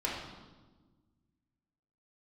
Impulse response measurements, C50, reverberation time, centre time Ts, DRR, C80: 1.5 dB, 1.3 s, 63 ms, −5.0 dB, 4.0 dB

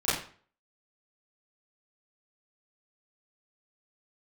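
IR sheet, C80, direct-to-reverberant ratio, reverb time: 7.0 dB, −13.5 dB, 0.45 s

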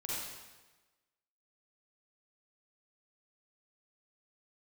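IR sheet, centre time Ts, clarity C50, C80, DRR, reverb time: 105 ms, −5.0 dB, −0.5 dB, −7.0 dB, 1.2 s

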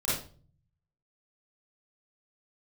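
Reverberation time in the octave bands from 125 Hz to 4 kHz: 1.2, 0.65, 0.45, 0.35, 0.30, 0.35 seconds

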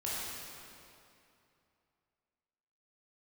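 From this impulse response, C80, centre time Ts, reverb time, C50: −2.0 dB, 171 ms, 2.7 s, −4.0 dB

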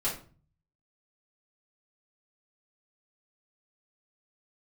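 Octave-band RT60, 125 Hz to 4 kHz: 0.85, 0.60, 0.40, 0.40, 0.35, 0.30 seconds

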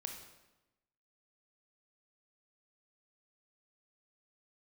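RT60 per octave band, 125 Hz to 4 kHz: 1.1, 1.2, 1.0, 1.0, 0.90, 0.85 seconds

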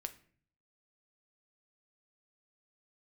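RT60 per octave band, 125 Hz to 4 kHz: 0.80, 0.70, 0.55, 0.45, 0.50, 0.35 seconds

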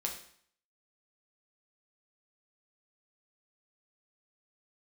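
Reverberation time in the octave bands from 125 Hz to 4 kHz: 0.60, 0.60, 0.55, 0.60, 0.60, 0.55 seconds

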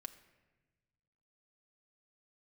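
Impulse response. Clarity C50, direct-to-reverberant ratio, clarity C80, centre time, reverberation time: 13.5 dB, 6.0 dB, 15.0 dB, 7 ms, 1.2 s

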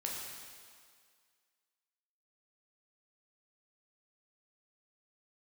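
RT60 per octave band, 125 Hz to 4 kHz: 1.5, 1.8, 1.9, 2.0, 1.9, 1.9 seconds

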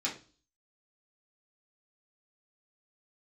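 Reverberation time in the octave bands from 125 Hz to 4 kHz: 0.50, 0.50, 0.40, 0.35, 0.35, 0.40 seconds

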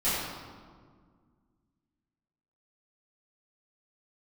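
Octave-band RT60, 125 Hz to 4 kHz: 2.5, 2.6, 1.9, 1.7, 1.2, 1.0 seconds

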